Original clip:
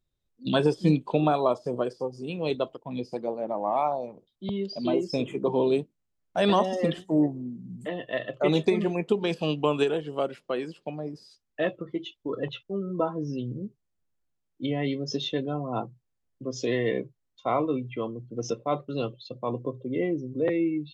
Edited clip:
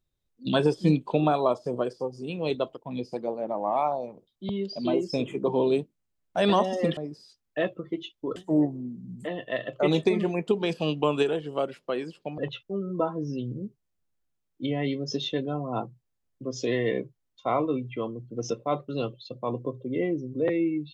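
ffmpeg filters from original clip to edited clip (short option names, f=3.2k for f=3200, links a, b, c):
-filter_complex "[0:a]asplit=4[a][b][c][d];[a]atrim=end=6.972[e];[b]atrim=start=10.988:end=12.382[f];[c]atrim=start=6.968:end=10.992[g];[d]atrim=start=12.378[h];[e][f]acrossfade=d=0.004:c1=hsin:c2=hsin[i];[i][g]acrossfade=d=0.004:c1=hsin:c2=hsin[j];[j][h]acrossfade=d=0.004:c1=hsin:c2=hsin"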